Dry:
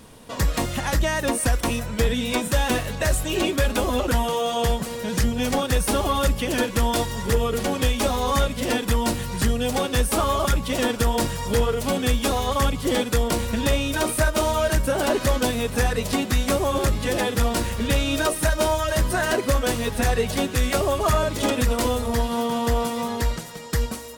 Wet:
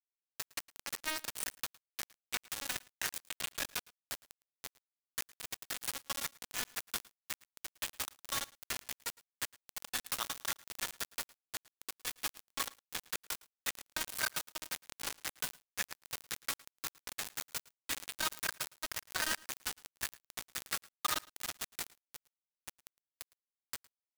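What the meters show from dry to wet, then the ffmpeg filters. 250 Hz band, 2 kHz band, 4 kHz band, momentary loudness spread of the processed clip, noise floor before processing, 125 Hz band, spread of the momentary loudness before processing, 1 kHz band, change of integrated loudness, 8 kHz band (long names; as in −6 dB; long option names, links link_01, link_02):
−32.0 dB, −13.5 dB, −12.5 dB, 11 LU, −32 dBFS, −35.5 dB, 3 LU, −20.5 dB, −16.5 dB, −11.0 dB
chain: -af "highpass=frequency=1200:width=0.5412,highpass=frequency=1200:width=1.3066,highshelf=frequency=3600:gain=-4,acrusher=bits=3:mix=0:aa=0.000001,aecho=1:1:110:0.0668,volume=-6.5dB"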